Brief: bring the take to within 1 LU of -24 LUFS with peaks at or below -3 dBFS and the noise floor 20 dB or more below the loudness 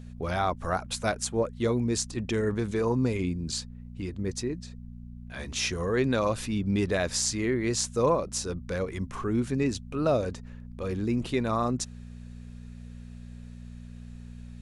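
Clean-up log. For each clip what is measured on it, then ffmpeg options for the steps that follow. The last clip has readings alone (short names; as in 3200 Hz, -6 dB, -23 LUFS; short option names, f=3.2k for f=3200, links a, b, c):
hum 60 Hz; harmonics up to 240 Hz; hum level -40 dBFS; loudness -29.0 LUFS; peak -9.5 dBFS; loudness target -24.0 LUFS
-> -af "bandreject=f=60:t=h:w=4,bandreject=f=120:t=h:w=4,bandreject=f=180:t=h:w=4,bandreject=f=240:t=h:w=4"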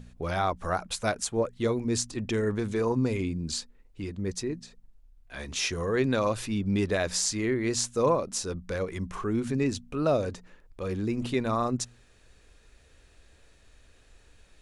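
hum none; loudness -29.0 LUFS; peak -9.5 dBFS; loudness target -24.0 LUFS
-> -af "volume=5dB"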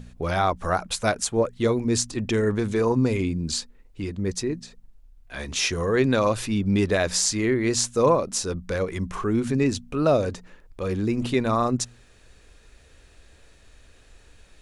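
loudness -24.0 LUFS; peak -4.5 dBFS; noise floor -54 dBFS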